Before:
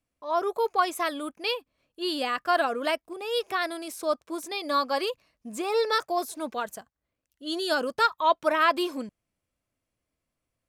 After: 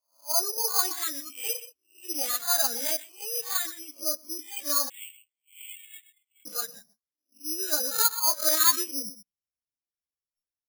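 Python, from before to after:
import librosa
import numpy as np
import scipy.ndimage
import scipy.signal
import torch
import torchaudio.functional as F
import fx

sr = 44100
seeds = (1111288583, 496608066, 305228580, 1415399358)

p1 = fx.spec_swells(x, sr, rise_s=0.41)
p2 = fx.chorus_voices(p1, sr, voices=2, hz=0.82, base_ms=13, depth_ms=3.2, mix_pct=45)
p3 = p2 + fx.echo_single(p2, sr, ms=126, db=-13.0, dry=0)
p4 = fx.noise_reduce_blind(p3, sr, reduce_db=18)
p5 = fx.cheby1_bandpass(p4, sr, low_hz=2000.0, high_hz=4400.0, order=5, at=(4.88, 6.45), fade=0.02)
p6 = (np.kron(scipy.signal.resample_poly(p5, 1, 8), np.eye(8)[0]) * 8)[:len(p5)]
y = F.gain(torch.from_numpy(p6), -7.0).numpy()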